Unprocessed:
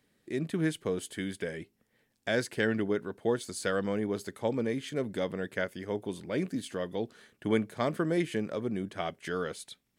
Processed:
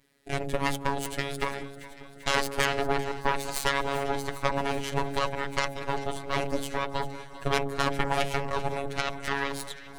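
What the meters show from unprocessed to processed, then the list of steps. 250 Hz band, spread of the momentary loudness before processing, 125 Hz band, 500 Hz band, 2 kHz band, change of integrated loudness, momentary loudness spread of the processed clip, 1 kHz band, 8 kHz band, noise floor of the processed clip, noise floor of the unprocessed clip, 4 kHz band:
-3.5 dB, 8 LU, +2.5 dB, +0.5 dB, +6.5 dB, +3.0 dB, 7 LU, +12.0 dB, +6.5 dB, -46 dBFS, -76 dBFS, +9.0 dB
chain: added harmonics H 8 -8 dB, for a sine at -13 dBFS; in parallel at +2 dB: compressor, threshold -32 dBFS, peak gain reduction 13 dB; on the sum: vibrato 1.6 Hz 84 cents; robotiser 139 Hz; de-hum 46.1 Hz, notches 18; on a send: echo with dull and thin repeats by turns 0.196 s, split 1500 Hz, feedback 82%, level -14 dB

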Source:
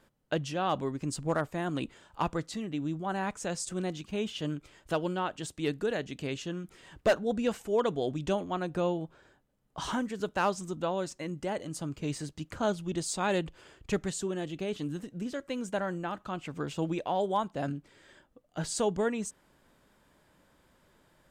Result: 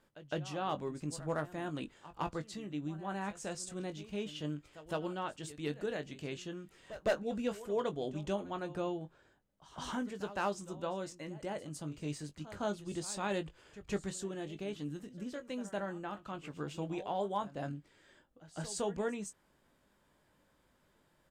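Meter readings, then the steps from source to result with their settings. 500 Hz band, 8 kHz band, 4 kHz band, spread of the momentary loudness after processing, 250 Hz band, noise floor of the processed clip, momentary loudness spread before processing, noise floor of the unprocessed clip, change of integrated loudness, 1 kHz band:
-6.5 dB, -6.5 dB, -6.5 dB, 8 LU, -6.5 dB, -72 dBFS, 8 LU, -67 dBFS, -6.5 dB, -6.5 dB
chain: doubler 20 ms -9 dB; pre-echo 0.16 s -16 dB; gain -7 dB

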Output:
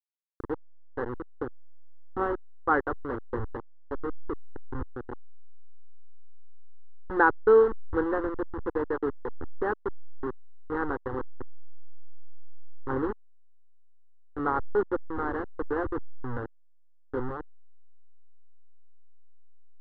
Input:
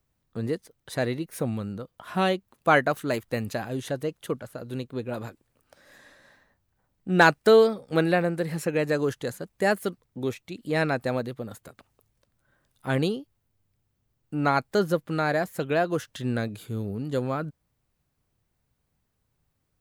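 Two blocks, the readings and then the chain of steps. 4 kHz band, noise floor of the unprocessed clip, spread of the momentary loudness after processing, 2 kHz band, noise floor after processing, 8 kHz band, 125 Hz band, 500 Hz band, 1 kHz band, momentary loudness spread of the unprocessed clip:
under -25 dB, -76 dBFS, 17 LU, -6.0 dB, -54 dBFS, under -35 dB, -11.5 dB, -3.5 dB, -3.0 dB, 14 LU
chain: level-crossing sampler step -21.5 dBFS; LPF 1900 Hz 24 dB/oct; fixed phaser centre 640 Hz, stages 6

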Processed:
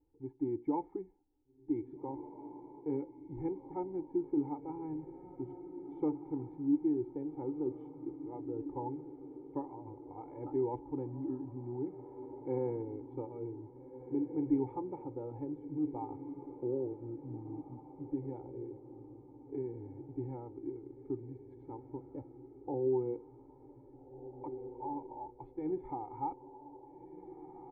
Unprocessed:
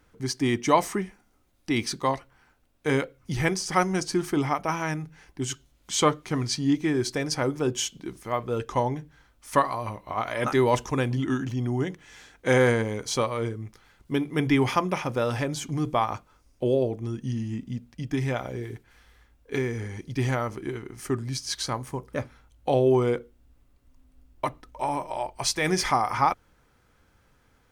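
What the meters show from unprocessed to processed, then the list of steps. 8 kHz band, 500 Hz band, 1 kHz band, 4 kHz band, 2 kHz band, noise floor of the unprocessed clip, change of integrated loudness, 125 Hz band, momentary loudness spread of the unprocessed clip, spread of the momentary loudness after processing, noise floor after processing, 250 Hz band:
under -40 dB, -12.0 dB, -17.0 dB, under -40 dB, under -40 dB, -64 dBFS, -12.5 dB, -17.0 dB, 12 LU, 16 LU, -58 dBFS, -8.0 dB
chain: vocal tract filter u; comb 2.3 ms, depth 84%; diffused feedback echo 1.696 s, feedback 42%, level -11 dB; gain -4.5 dB

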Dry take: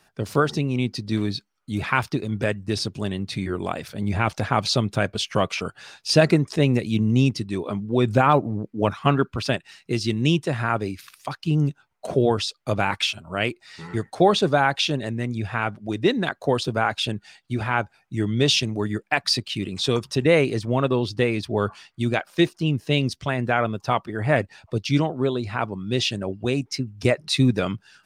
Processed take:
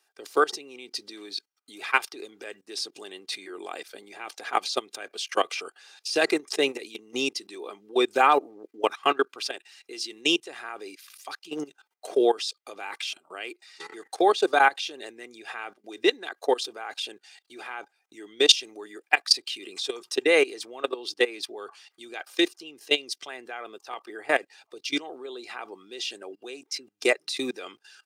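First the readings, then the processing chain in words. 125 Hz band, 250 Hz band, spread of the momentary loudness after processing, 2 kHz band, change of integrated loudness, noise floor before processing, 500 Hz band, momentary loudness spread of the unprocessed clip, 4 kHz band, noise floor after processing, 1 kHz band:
under -35 dB, -10.5 dB, 20 LU, -1.5 dB, -3.0 dB, -67 dBFS, -4.0 dB, 10 LU, -1.0 dB, -76 dBFS, -2.5 dB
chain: level quantiser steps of 19 dB; HPF 330 Hz 24 dB/oct; high shelf 2300 Hz +8.5 dB; comb 2.5 ms, depth 39%

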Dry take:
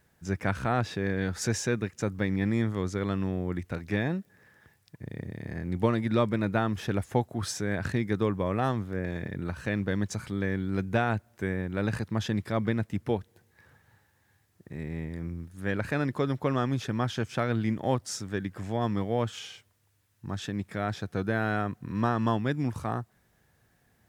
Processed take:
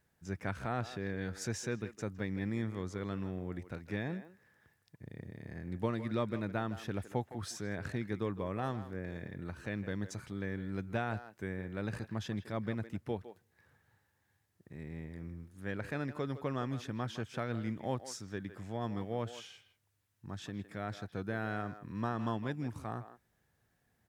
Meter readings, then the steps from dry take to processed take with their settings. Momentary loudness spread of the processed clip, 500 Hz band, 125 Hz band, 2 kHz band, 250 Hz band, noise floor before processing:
9 LU, -9.0 dB, -9.0 dB, -9.0 dB, -9.0 dB, -68 dBFS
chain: speakerphone echo 0.16 s, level -12 dB; gain -9 dB

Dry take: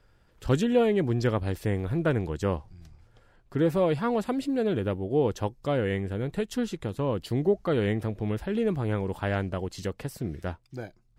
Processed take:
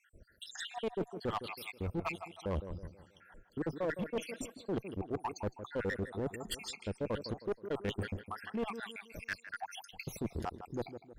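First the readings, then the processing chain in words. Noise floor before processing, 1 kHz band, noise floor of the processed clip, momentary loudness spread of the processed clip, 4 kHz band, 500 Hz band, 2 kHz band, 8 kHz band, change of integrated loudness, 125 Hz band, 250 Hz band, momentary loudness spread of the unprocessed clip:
-62 dBFS, -7.0 dB, -66 dBFS, 8 LU, -4.0 dB, -12.0 dB, -5.5 dB, -2.5 dB, -11.5 dB, -14.0 dB, -12.5 dB, 11 LU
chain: random spectral dropouts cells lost 80%; bell 130 Hz -9.5 dB 0.3 oct; reverse; compressor 12:1, threshold -36 dBFS, peak gain reduction 18 dB; reverse; soft clip -31.5 dBFS, distortion -17 dB; on a send: tape echo 0.159 s, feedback 46%, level -9 dB, low-pass 1700 Hz; on the sum: one-sided clip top -39.5 dBFS; gain +7 dB

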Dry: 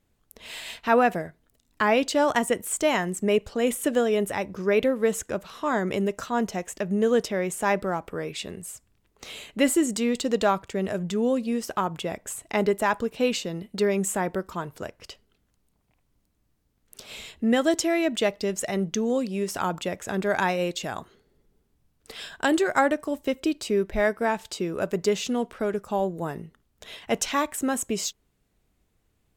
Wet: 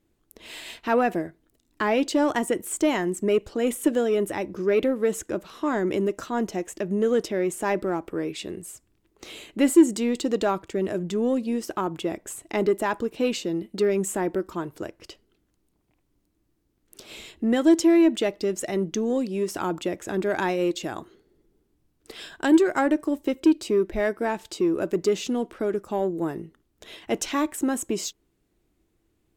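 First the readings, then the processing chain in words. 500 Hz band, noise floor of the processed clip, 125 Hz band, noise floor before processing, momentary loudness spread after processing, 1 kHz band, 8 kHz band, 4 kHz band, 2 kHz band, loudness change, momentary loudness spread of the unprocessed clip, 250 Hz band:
+0.5 dB, -71 dBFS, -1.5 dB, -71 dBFS, 14 LU, -2.5 dB, -2.0 dB, -2.5 dB, -3.0 dB, +1.0 dB, 13 LU, +3.5 dB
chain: bell 330 Hz +13 dB 0.46 oct; in parallel at -4.5 dB: soft clip -17 dBFS, distortion -8 dB; on the sum: gain -6 dB

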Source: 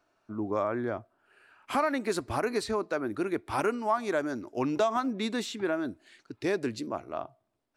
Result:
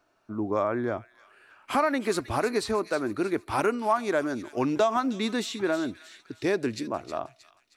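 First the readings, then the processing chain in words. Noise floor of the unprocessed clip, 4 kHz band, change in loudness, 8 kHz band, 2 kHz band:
-74 dBFS, +3.5 dB, +3.0 dB, +3.5 dB, +3.0 dB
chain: thin delay 0.314 s, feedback 43%, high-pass 2700 Hz, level -9 dB; gain +3 dB

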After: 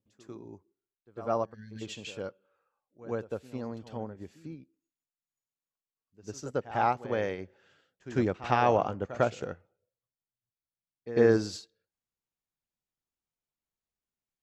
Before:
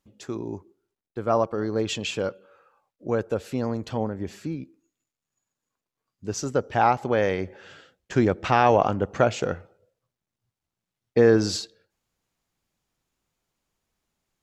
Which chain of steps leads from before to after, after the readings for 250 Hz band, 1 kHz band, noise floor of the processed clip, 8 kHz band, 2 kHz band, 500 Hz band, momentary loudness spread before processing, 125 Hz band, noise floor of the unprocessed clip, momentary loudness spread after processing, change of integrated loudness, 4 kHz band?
-7.5 dB, -6.5 dB, under -85 dBFS, -11.5 dB, -7.0 dB, -6.5 dB, 17 LU, -7.5 dB, under -85 dBFS, 23 LU, -6.0 dB, -10.5 dB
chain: spectral gain 1.54–1.82, 270–1500 Hz -27 dB; reverse echo 0.1 s -10.5 dB; upward expander 1.5:1, over -40 dBFS; gain -4.5 dB

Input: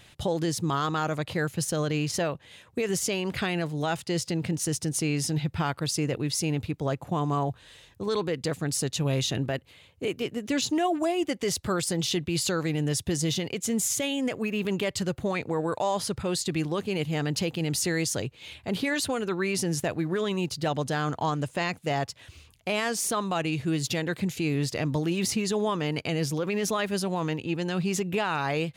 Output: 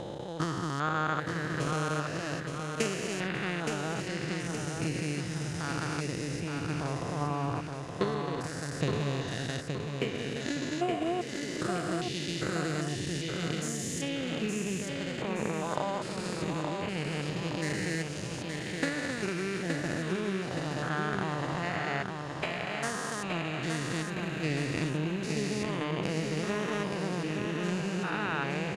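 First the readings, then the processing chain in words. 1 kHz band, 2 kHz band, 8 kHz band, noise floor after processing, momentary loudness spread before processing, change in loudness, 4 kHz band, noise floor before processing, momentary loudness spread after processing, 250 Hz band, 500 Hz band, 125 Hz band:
-3.0 dB, -1.0 dB, -9.5 dB, -38 dBFS, 4 LU, -4.5 dB, -5.5 dB, -55 dBFS, 4 LU, -4.5 dB, -5.0 dB, -4.0 dB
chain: stepped spectrum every 0.4 s; LPF 8800 Hz 12 dB/oct; transient shaper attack +11 dB, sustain -4 dB; bell 1600 Hz +8.5 dB 1 oct; on a send: feedback echo 0.87 s, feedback 49%, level -5 dB; on the sum: gain -4 dB

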